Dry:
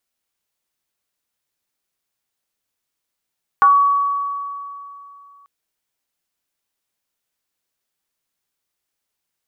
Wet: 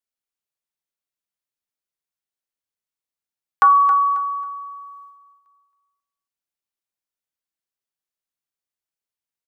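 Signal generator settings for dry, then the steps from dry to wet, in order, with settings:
FM tone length 1.84 s, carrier 1.13 kHz, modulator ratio 0.29, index 0.74, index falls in 0.26 s exponential, decay 2.80 s, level -7 dB
gate -42 dBFS, range -13 dB; on a send: feedback delay 271 ms, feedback 30%, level -11 dB

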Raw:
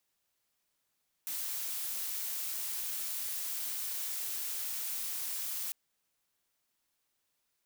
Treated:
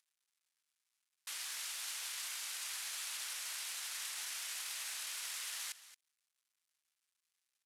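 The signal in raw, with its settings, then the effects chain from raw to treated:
noise blue, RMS -37 dBFS 4.45 s
CVSD coder 64 kbps; high-pass 1.4 kHz 12 dB/octave; delay 224 ms -15.5 dB

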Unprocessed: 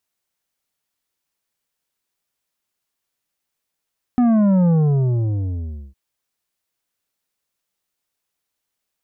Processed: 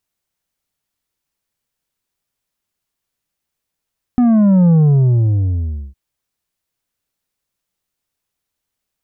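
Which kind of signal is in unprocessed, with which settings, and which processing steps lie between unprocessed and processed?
sub drop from 250 Hz, over 1.76 s, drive 8.5 dB, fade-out 1.26 s, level -13 dB
bass shelf 190 Hz +9 dB

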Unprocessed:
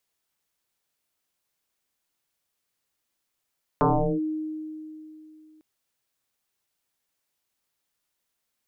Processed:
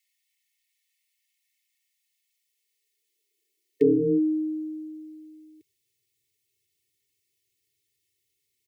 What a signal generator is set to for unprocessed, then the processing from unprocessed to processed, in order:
FM tone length 1.80 s, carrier 311 Hz, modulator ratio 0.47, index 6.1, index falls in 0.39 s linear, decay 2.97 s, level -16 dB
comb 2.3 ms, depth 86%; high-pass sweep 1.7 kHz -> 100 Hz, 1.61–5.08 s; brick-wall FIR band-stop 470–1800 Hz

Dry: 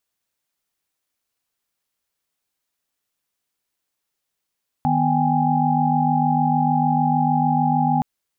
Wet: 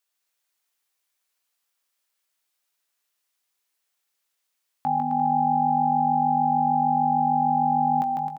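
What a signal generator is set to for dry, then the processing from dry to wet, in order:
chord D#3/B3/G5/G#5 sine, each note -21.5 dBFS 3.17 s
high-pass 820 Hz 6 dB/octave; doubling 19 ms -10 dB; on a send: bouncing-ball echo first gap 150 ms, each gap 0.75×, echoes 5

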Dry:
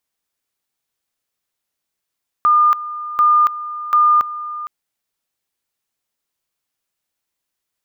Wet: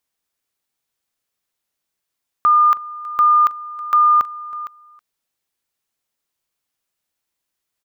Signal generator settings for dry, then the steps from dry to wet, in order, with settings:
two-level tone 1.21 kHz -9 dBFS, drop 15 dB, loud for 0.28 s, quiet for 0.46 s, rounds 3
delay 321 ms -20 dB

